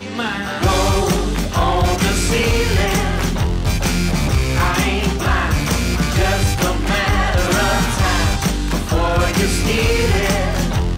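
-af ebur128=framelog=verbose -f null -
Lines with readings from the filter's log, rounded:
Integrated loudness:
  I:         -17.3 LUFS
  Threshold: -27.3 LUFS
Loudness range:
  LRA:         0.8 LU
  Threshold: -37.3 LUFS
  LRA low:   -17.7 LUFS
  LRA high:  -16.9 LUFS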